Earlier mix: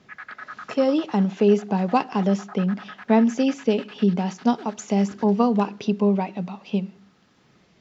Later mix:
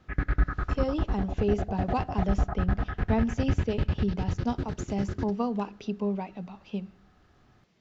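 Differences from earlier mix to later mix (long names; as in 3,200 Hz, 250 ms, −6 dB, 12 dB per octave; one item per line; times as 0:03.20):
speech −9.5 dB
background: remove high-pass filter 890 Hz 24 dB per octave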